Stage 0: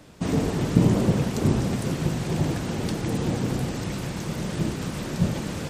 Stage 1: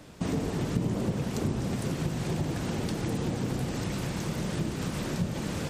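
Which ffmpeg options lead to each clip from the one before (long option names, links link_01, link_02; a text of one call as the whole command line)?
ffmpeg -i in.wav -af "acompressor=threshold=-28dB:ratio=3" out.wav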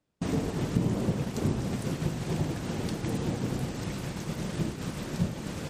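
ffmpeg -i in.wav -af "agate=range=-33dB:threshold=-26dB:ratio=3:detection=peak,volume=2.5dB" out.wav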